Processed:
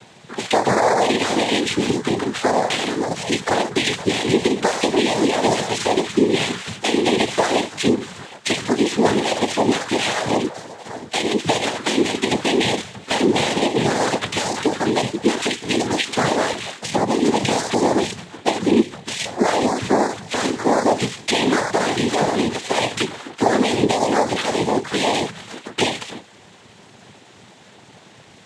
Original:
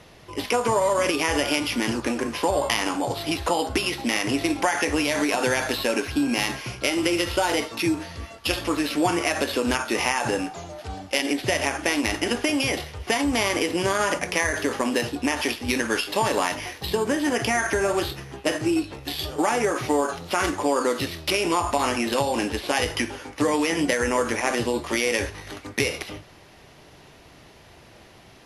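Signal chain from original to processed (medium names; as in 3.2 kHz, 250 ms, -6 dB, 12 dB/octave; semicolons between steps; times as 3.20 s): touch-sensitive flanger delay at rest 9.2 ms, full sweep at -20.5 dBFS; noise-vocoded speech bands 6; trim +7 dB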